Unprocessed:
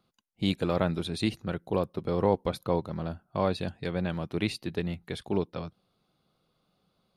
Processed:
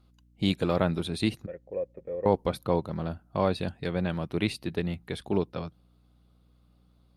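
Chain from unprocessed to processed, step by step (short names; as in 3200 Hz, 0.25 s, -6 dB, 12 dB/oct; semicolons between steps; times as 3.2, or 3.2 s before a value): 1.46–2.26 vocal tract filter e; hum 60 Hz, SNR 31 dB; gain +1.5 dB; Opus 48 kbps 48000 Hz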